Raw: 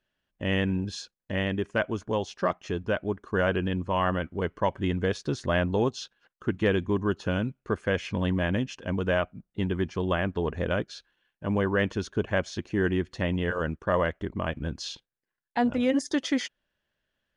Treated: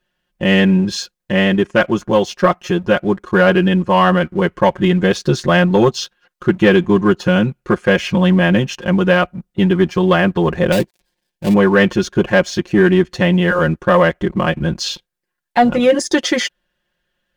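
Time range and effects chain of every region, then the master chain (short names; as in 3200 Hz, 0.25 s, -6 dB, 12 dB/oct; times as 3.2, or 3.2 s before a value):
10.72–11.54 switching dead time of 0.2 ms + bell 1300 Hz -13 dB 0.49 oct + notch 1000 Hz, Q 26
whole clip: comb 5.6 ms, depth 92%; sample leveller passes 1; gain +8 dB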